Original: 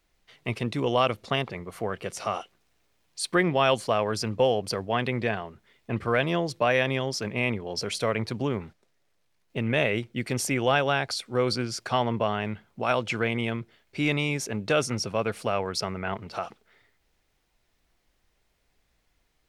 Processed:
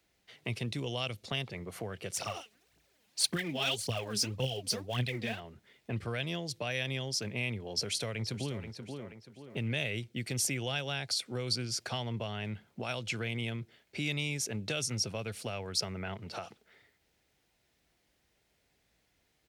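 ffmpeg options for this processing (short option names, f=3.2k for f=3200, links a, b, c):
-filter_complex "[0:a]asplit=3[a][b][c];[a]afade=t=out:st=2.12:d=0.02[d];[b]aphaser=in_gain=1:out_gain=1:delay=5:decay=0.7:speed=1.8:type=triangular,afade=t=in:st=2.12:d=0.02,afade=t=out:st=5.39:d=0.02[e];[c]afade=t=in:st=5.39:d=0.02[f];[d][e][f]amix=inputs=3:normalize=0,asplit=2[g][h];[h]afade=t=in:st=7.71:d=0.01,afade=t=out:st=8.64:d=0.01,aecho=0:1:480|960|1440:0.251189|0.0753566|0.022607[i];[g][i]amix=inputs=2:normalize=0,highpass=75,equalizer=f=1.1k:w=2.3:g=-5.5,acrossover=split=120|3000[j][k][l];[k]acompressor=threshold=-39dB:ratio=4[m];[j][m][l]amix=inputs=3:normalize=0"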